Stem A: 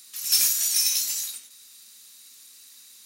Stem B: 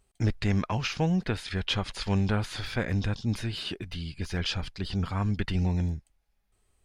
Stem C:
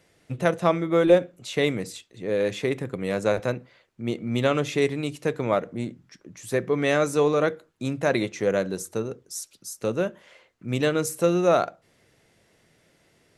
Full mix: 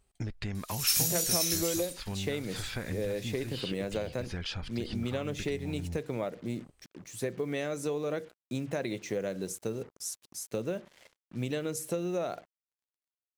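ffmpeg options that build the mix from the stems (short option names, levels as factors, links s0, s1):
-filter_complex "[0:a]adelay=550,volume=0.473[s0];[1:a]acompressor=threshold=0.0316:ratio=6,volume=0.794[s1];[2:a]equalizer=f=1200:w=1.5:g=-6.5,acrusher=bits=7:mix=0:aa=0.5,adelay=700,volume=0.708[s2];[s1][s2]amix=inputs=2:normalize=0,acompressor=threshold=0.0355:ratio=10,volume=1[s3];[s0][s3]amix=inputs=2:normalize=0"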